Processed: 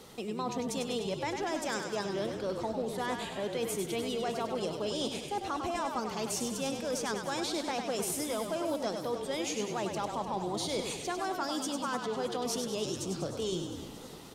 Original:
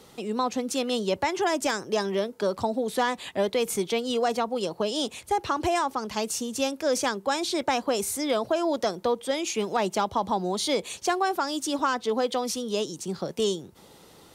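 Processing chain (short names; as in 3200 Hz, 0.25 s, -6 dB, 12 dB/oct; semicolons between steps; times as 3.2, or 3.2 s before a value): reverse; compressor 6:1, threshold -32 dBFS, peak gain reduction 12.5 dB; reverse; frequency-shifting echo 99 ms, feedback 55%, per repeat -38 Hz, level -6 dB; warbling echo 0.307 s, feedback 74%, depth 191 cents, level -16 dB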